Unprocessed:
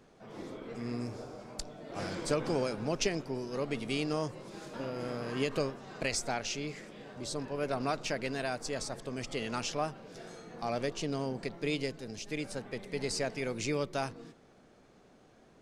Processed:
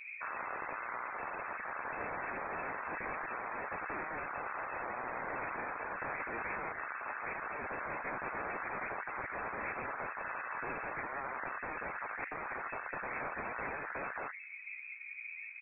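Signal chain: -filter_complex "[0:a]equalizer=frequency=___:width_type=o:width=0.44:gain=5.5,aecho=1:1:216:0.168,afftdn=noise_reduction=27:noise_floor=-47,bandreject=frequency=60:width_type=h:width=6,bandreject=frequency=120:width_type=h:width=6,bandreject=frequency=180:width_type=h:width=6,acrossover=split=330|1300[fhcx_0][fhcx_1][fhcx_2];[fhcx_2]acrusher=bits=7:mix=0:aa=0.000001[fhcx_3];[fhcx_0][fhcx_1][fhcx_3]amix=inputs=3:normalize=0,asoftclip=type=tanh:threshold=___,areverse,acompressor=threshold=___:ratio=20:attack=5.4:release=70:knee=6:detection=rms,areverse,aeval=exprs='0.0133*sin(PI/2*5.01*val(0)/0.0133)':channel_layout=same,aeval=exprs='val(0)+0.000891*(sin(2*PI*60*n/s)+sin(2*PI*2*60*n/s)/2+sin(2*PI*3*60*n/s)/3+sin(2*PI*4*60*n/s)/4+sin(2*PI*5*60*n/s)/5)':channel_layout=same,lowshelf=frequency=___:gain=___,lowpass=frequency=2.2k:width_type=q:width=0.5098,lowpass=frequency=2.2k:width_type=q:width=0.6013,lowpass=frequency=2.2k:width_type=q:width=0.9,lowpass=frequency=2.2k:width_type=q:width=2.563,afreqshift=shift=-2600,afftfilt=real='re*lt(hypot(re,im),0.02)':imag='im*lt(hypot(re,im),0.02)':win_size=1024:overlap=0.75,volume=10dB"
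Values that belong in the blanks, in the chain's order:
61, -27dB, -45dB, 370, 9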